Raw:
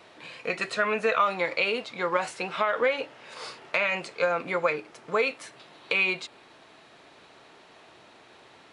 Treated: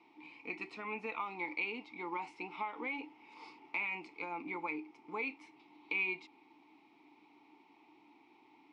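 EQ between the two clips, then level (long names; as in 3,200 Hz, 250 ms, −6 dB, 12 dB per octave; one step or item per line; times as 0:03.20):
formant filter u
parametric band 5,300 Hz +7.5 dB 0.27 octaves
high-shelf EQ 9,300 Hz +3.5 dB
+2.0 dB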